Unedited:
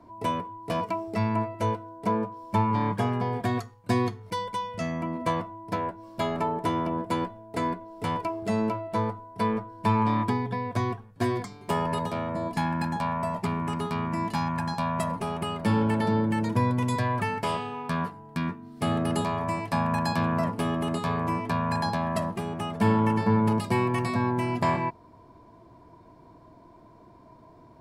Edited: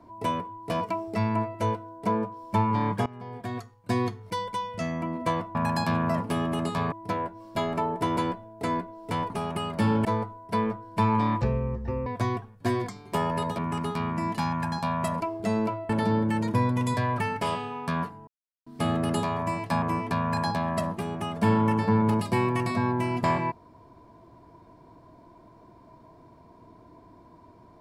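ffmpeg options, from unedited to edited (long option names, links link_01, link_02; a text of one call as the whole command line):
ffmpeg -i in.wav -filter_complex "[0:a]asplit=15[link_01][link_02][link_03][link_04][link_05][link_06][link_07][link_08][link_09][link_10][link_11][link_12][link_13][link_14][link_15];[link_01]atrim=end=3.06,asetpts=PTS-STARTPTS,afade=type=out:start_time=3.056:duration=0.004:curve=hsin:silence=0.105925[link_16];[link_02]atrim=start=3.06:end=5.552,asetpts=PTS-STARTPTS,afade=type=in:duration=1.12:silence=0.105925[link_17];[link_03]atrim=start=19.838:end=21.212[link_18];[link_04]atrim=start=5.548:end=6.802[link_19];[link_05]atrim=start=7.098:end=8.232[link_20];[link_06]atrim=start=15.158:end=15.912[link_21];[link_07]atrim=start=8.918:end=10.284[link_22];[link_08]atrim=start=10.28:end=10.62,asetpts=PTS-STARTPTS,asetrate=22932,aresample=44100[link_23];[link_09]atrim=start=10.616:end=12.142[link_24];[link_10]atrim=start=13.538:end=15.162[link_25];[link_11]atrim=start=8.228:end=8.922[link_26];[link_12]atrim=start=15.908:end=18.29,asetpts=PTS-STARTPTS,afade=type=out:start_time=2.378:duration=0.004:curve=hsin[link_27];[link_13]atrim=start=18.29:end=18.68,asetpts=PTS-STARTPTS,volume=0[link_28];[link_14]atrim=start=18.68:end=19.842,asetpts=PTS-STARTPTS,afade=type=in:duration=0.004:curve=hsin[link_29];[link_15]atrim=start=21.208[link_30];[link_16][link_17]concat=n=2:v=0:a=1[link_31];[link_31][link_18]acrossfade=duration=0.004:curve1=hsin:curve2=hsin[link_32];[link_32][link_19]acrossfade=duration=0.004:curve1=hsin:curve2=hsin[link_33];[link_33][link_20]acrossfade=duration=0.004:curve1=hsin:curve2=hsin[link_34];[link_34][link_21]acrossfade=duration=0.004:curve1=hsin:curve2=hsin[link_35];[link_35][link_22]acrossfade=duration=0.004:curve1=hsin:curve2=hsin[link_36];[link_36][link_23]acrossfade=duration=0.004:curve1=hsin:curve2=hsin[link_37];[link_37][link_24]acrossfade=duration=0.004:curve1=hsin:curve2=hsin[link_38];[link_38][link_25]acrossfade=duration=0.004:curve1=hsin:curve2=hsin[link_39];[link_39][link_26]acrossfade=duration=0.004:curve1=hsin:curve2=hsin[link_40];[link_27][link_28][link_29]concat=n=3:v=0:a=1[link_41];[link_40][link_41]acrossfade=duration=0.004:curve1=hsin:curve2=hsin[link_42];[link_42][link_30]acrossfade=duration=0.004:curve1=hsin:curve2=hsin" out.wav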